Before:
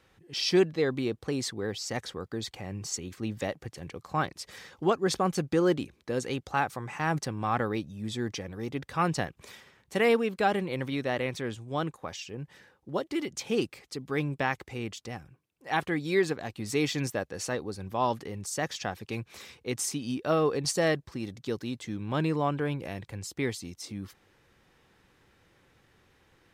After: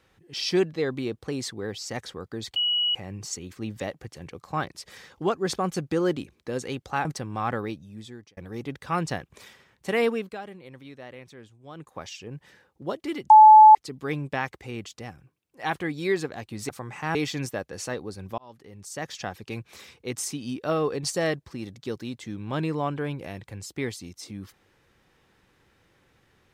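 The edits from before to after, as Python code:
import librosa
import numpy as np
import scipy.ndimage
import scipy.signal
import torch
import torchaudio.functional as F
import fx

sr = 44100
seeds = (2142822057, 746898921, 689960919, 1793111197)

y = fx.edit(x, sr, fx.insert_tone(at_s=2.56, length_s=0.39, hz=2920.0, db=-21.0),
    fx.move(start_s=6.66, length_s=0.46, to_s=16.76),
    fx.fade_out_span(start_s=7.66, length_s=0.78),
    fx.fade_down_up(start_s=10.24, length_s=1.79, db=-13.0, fade_s=0.21),
    fx.bleep(start_s=13.37, length_s=0.45, hz=863.0, db=-7.0),
    fx.fade_in_span(start_s=17.99, length_s=0.88), tone=tone)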